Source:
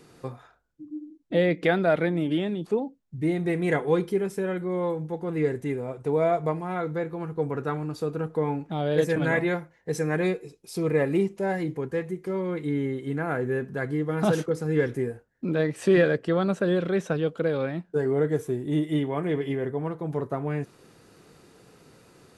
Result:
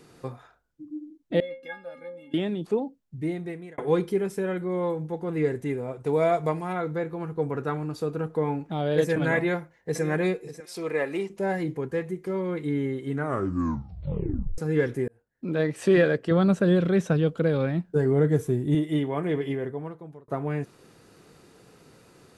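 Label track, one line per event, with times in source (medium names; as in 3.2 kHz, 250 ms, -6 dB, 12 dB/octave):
1.400000	2.340000	inharmonic resonator 250 Hz, decay 0.44 s, inharmonicity 0.03
3.000000	3.780000	fade out
6.060000	6.730000	treble shelf 2.4 kHz +7.5 dB
9.360000	10.060000	echo throw 590 ms, feedback 15%, level -13.5 dB
10.600000	11.300000	frequency weighting A
13.110000	13.110000	tape stop 1.47 s
15.080000	15.630000	fade in
16.310000	18.750000	tone controls bass +8 dB, treble +2 dB
19.470000	20.280000	fade out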